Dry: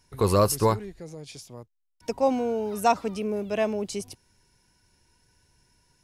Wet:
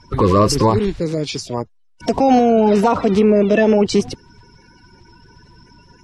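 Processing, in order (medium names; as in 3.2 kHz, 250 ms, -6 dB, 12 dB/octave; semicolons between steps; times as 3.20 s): coarse spectral quantiser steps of 30 dB; distance through air 140 m; band-stop 6.7 kHz, Q 21; 0.70–2.50 s: treble shelf 5.6 kHz +9 dB; loudness maximiser +24.5 dB; trim -4 dB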